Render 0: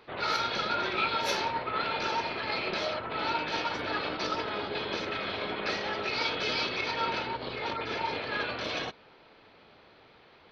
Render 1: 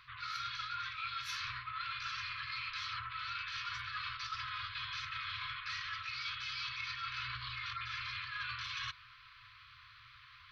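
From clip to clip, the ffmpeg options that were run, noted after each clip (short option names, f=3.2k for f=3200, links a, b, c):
-af "afftfilt=real='re*(1-between(b*sr/4096,130,1000))':imag='im*(1-between(b*sr/4096,130,1000))':win_size=4096:overlap=0.75,areverse,acompressor=threshold=-41dB:ratio=8,areverse,volume=2.5dB"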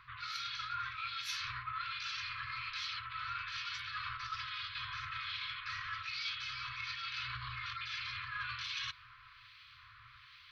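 -filter_complex "[0:a]acrossover=split=2000[a][b];[a]aeval=exprs='val(0)*(1-0.7/2+0.7/2*cos(2*PI*1.2*n/s))':c=same[c];[b]aeval=exprs='val(0)*(1-0.7/2-0.7/2*cos(2*PI*1.2*n/s))':c=same[d];[c][d]amix=inputs=2:normalize=0,volume=3.5dB"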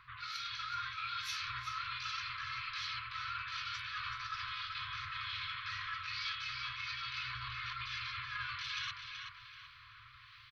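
-filter_complex "[0:a]asplit=2[a][b];[b]adelay=379,lowpass=f=3.5k:p=1,volume=-4dB,asplit=2[c][d];[d]adelay=379,lowpass=f=3.5k:p=1,volume=0.45,asplit=2[e][f];[f]adelay=379,lowpass=f=3.5k:p=1,volume=0.45,asplit=2[g][h];[h]adelay=379,lowpass=f=3.5k:p=1,volume=0.45,asplit=2[i][j];[j]adelay=379,lowpass=f=3.5k:p=1,volume=0.45,asplit=2[k][l];[l]adelay=379,lowpass=f=3.5k:p=1,volume=0.45[m];[a][c][e][g][i][k][m]amix=inputs=7:normalize=0,volume=-1dB"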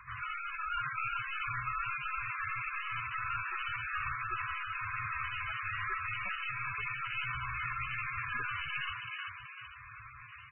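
-af "aresample=16000,aeval=exprs='clip(val(0),-1,0.00708)':c=same,aresample=44100,volume=7.5dB" -ar 24000 -c:a libmp3lame -b:a 8k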